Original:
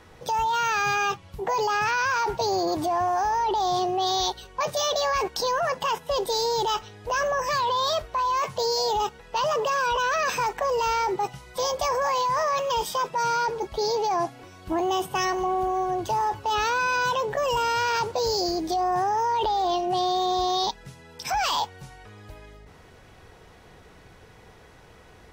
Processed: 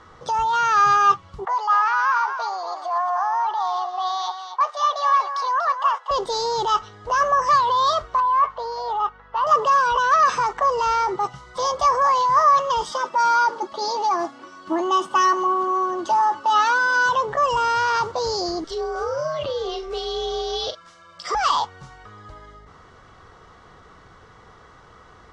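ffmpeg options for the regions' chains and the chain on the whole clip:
ffmpeg -i in.wav -filter_complex "[0:a]asettb=1/sr,asplit=3[link_01][link_02][link_03];[link_01]atrim=end=1.454[link_04];[link_02]atrim=start=1.45:end=6.11,asetpts=PTS-STARTPTS,afade=type=in:duration=0.004:curve=qsin,afade=type=out:start_time=4.656:duration=0.004:curve=qsin,highpass=frequency=700:width=0.5412,highpass=frequency=700:width=1.3066,aemphasis=mode=reproduction:type=75kf,aecho=1:1:239:0.355,atrim=end_sample=205506[link_05];[link_03]atrim=start=6.106[link_06];[link_04][link_05]acrossfade=duration=0.004:curve1=hsin:curve2=qsin[link_07];[link_07][link_06]acrossfade=duration=0.004:curve1=qsin:curve2=hsin,asettb=1/sr,asplit=3[link_08][link_09][link_10];[link_08]atrim=end=8.204[link_11];[link_09]atrim=start=8.2:end=9.47,asetpts=PTS-STARTPTS,afade=type=in:duration=0.004:curve=qsin,afade=type=out:start_time=1.266:duration=0.004:curve=qsin,highpass=640,lowpass=2100,aeval=exprs='val(0)+0.00224*(sin(2*PI*50*n/s)+sin(2*PI*2*50*n/s)/2+sin(2*PI*3*50*n/s)/3+sin(2*PI*4*50*n/s)/4+sin(2*PI*5*50*n/s)/5)':channel_layout=same[link_12];[link_10]atrim=start=9.466[link_13];[link_11][link_12]acrossfade=duration=0.004:curve1=hsin:curve2=qsin[link_14];[link_14][link_13]acrossfade=duration=0.004:curve1=qsin:curve2=hsin,asettb=1/sr,asplit=3[link_15][link_16][link_17];[link_15]atrim=end=12.914[link_18];[link_16]atrim=start=12.91:end=17.09,asetpts=PTS-STARTPTS,afade=type=in:duration=0.004:curve=qsin,afade=type=out:start_time=4.176:duration=0.004:curve=qsin,highpass=frequency=160:width=0.5412,highpass=frequency=160:width=1.3066,aecho=1:1:3.4:0.65,atrim=end_sample=184338[link_19];[link_17]atrim=start=17.086[link_20];[link_18][link_19]acrossfade=duration=0.004:curve1=hsin:curve2=qsin[link_21];[link_21][link_20]acrossfade=duration=0.004:curve1=qsin:curve2=hsin,asettb=1/sr,asplit=3[link_22][link_23][link_24];[link_22]atrim=end=18.644[link_25];[link_23]atrim=start=18.64:end=21.35,asetpts=PTS-STARTPTS,afade=type=in:duration=0.004:curve=qsin,afade=type=out:start_time=2.706:duration=0.004:curve=qsin,highpass=780,afreqshift=-320,asplit=2[link_26][link_27];[link_27]adelay=41,volume=-9dB[link_28];[link_26][link_28]amix=inputs=2:normalize=0,atrim=end_sample=119511[link_29];[link_24]atrim=start=21.346[link_30];[link_25][link_29]acrossfade=duration=0.004:curve1=hsin:curve2=qsin[link_31];[link_31][link_30]acrossfade=duration=0.004:curve1=qsin:curve2=hsin,lowpass=frequency=7500:width=0.5412,lowpass=frequency=7500:width=1.3066,equalizer=frequency=1200:width_type=o:width=0.4:gain=14,bandreject=frequency=2500:width=7.4" out.wav

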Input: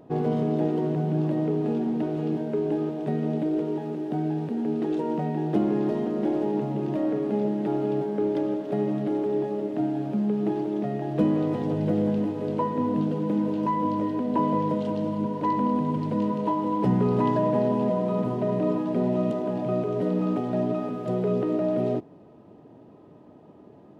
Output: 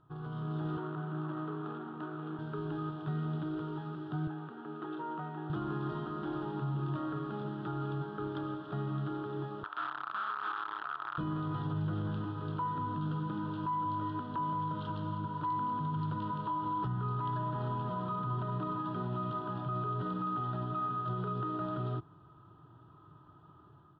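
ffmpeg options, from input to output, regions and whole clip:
ffmpeg -i in.wav -filter_complex "[0:a]asettb=1/sr,asplit=3[link_01][link_02][link_03];[link_01]atrim=end=0.774[link_04];[link_02]atrim=start=0.77:end=2.39,asetpts=PTS-STARTPTS,afade=type=in:duration=0.004:curve=qsin,afade=type=out:start_time=1.616:duration=0.004:curve=qsin,adynamicsmooth=sensitivity=6:basefreq=1000,highpass=260,lowpass=4000[link_05];[link_03]atrim=start=2.386[link_06];[link_04][link_05]acrossfade=duration=0.004:curve1=hsin:curve2=qsin[link_07];[link_07][link_06]acrossfade=duration=0.004:curve1=qsin:curve2=hsin,asettb=1/sr,asplit=3[link_08][link_09][link_10];[link_08]atrim=end=4.274[link_11];[link_09]atrim=start=4.27:end=5.5,asetpts=PTS-STARTPTS,afade=type=in:duration=0.004:curve=qsin,afade=type=out:start_time=1.226:duration=0.004:curve=qsin,highpass=190,bass=frequency=250:gain=-6,treble=frequency=4000:gain=-15[link_12];[link_10]atrim=start=5.496[link_13];[link_11][link_12]acrossfade=duration=0.004:curve1=hsin:curve2=qsin[link_14];[link_14][link_13]acrossfade=duration=0.004:curve1=qsin:curve2=hsin,asettb=1/sr,asplit=3[link_15][link_16][link_17];[link_15]atrim=end=9.634[link_18];[link_16]atrim=start=9.63:end=11.18,asetpts=PTS-STARTPTS,afade=type=in:duration=0.004:curve=qsin,afade=type=out:start_time=1.546:duration=0.004:curve=qsin,acrusher=bits=5:dc=4:mix=0:aa=0.000001,highpass=760,lowpass=2200[link_19];[link_17]atrim=start=11.176[link_20];[link_18][link_19]acrossfade=duration=0.004:curve1=hsin:curve2=qsin[link_21];[link_21][link_20]acrossfade=duration=0.004:curve1=qsin:curve2=hsin,firequalizer=gain_entry='entry(140,0);entry(220,-21);entry(330,-11);entry(510,-23);entry(1300,10);entry(2100,-20);entry(3300,0);entry(6400,-27)':delay=0.05:min_phase=1,alimiter=level_in=4.5dB:limit=-24dB:level=0:latency=1:release=37,volume=-4.5dB,dynaudnorm=framelen=170:gausssize=5:maxgain=8dB,volume=-7dB" out.wav

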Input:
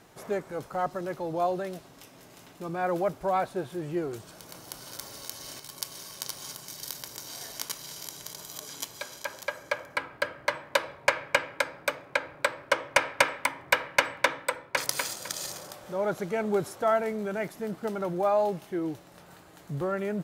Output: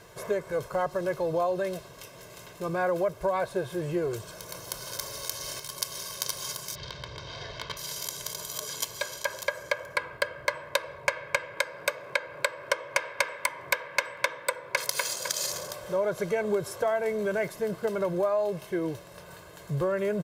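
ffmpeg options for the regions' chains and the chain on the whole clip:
ffmpeg -i in.wav -filter_complex "[0:a]asettb=1/sr,asplit=3[link_01][link_02][link_03];[link_01]atrim=end=6.754[link_04];[link_02]atrim=start=6.75:end=7.77,asetpts=PTS-STARTPTS,afade=type=in:duration=0.004:curve=qsin,afade=type=out:start_time=1.016:duration=0.004:curve=qsin,lowpass=frequency=3900:width=0.5412,lowpass=frequency=3900:width=1.3066,equalizer=frequency=70:width_type=o:width=1.8:gain=13,asoftclip=type=hard:threshold=-29dB[link_05];[link_03]atrim=start=7.766[link_06];[link_04][link_05]acrossfade=duration=0.004:curve1=hsin:curve2=qsin[link_07];[link_07][link_06]acrossfade=duration=0.004:curve1=qsin:curve2=hsin,asettb=1/sr,asplit=3[link_08][link_09][link_10];[link_08]atrim=end=11.574[link_11];[link_09]atrim=start=11.57:end=15.54,asetpts=PTS-STARTPTS,afade=type=in:duration=0.004:curve=qsin,afade=type=out:start_time=3.966:duration=0.004:curve=qsin,highpass=frequency=200:poles=1,acompressor=mode=upward:threshold=-41dB:ratio=2.5:attack=3.2:release=140:knee=2.83:detection=peak[link_12];[link_10]atrim=start=15.536[link_13];[link_11][link_12]acrossfade=duration=0.004:curve1=hsin:curve2=qsin[link_14];[link_14][link_13]acrossfade=duration=0.004:curve1=qsin:curve2=hsin,aecho=1:1:1.9:0.68,acompressor=threshold=-27dB:ratio=6,volume=3.5dB" out.wav

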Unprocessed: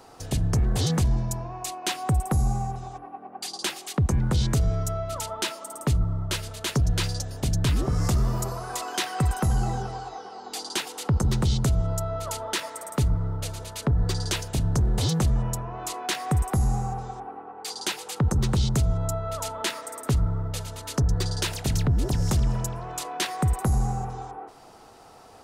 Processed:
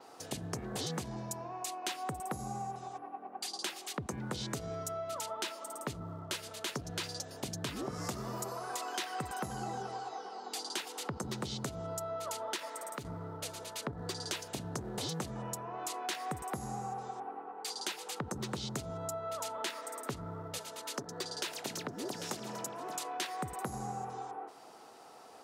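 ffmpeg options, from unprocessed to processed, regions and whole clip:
ffmpeg -i in.wav -filter_complex "[0:a]asettb=1/sr,asplit=3[link_01][link_02][link_03];[link_01]atrim=end=12.564[link_04];[link_02]atrim=start=12.56:end=13.05,asetpts=PTS-STARTPTS,afade=type=in:duration=0.004:curve=qsin,afade=type=out:start_time=0.486:duration=0.004:curve=qsin,asoftclip=type=hard:threshold=-18dB,acompressor=threshold=-29dB:ratio=6:attack=3.2:release=140:knee=1:detection=peak[link_05];[link_03]atrim=start=13.046[link_06];[link_04][link_05]acrossfade=duration=0.004:curve1=hsin:curve2=qsin[link_07];[link_07][link_06]acrossfade=duration=0.004:curve1=qsin:curve2=hsin,asettb=1/sr,asplit=3[link_08][link_09][link_10];[link_08]atrim=end=20.584[link_11];[link_09]atrim=start=20.58:end=22.96,asetpts=PTS-STARTPTS,afade=type=in:duration=0.004:curve=qsin,afade=type=out:start_time=2.376:duration=0.004:curve=qsin,highpass=220,aecho=1:1:795:0.251,atrim=end_sample=104958[link_12];[link_10]atrim=start=22.956[link_13];[link_11][link_12]acrossfade=duration=0.004:curve1=hsin:curve2=qsin[link_14];[link_14][link_13]acrossfade=duration=0.004:curve1=qsin:curve2=hsin,highpass=240,adynamicequalizer=threshold=0.00355:dfrequency=9800:dqfactor=1.1:tfrequency=9800:tqfactor=1.1:attack=5:release=100:ratio=0.375:range=2:mode=cutabove:tftype=bell,acompressor=threshold=-32dB:ratio=2.5,volume=-4dB" out.wav

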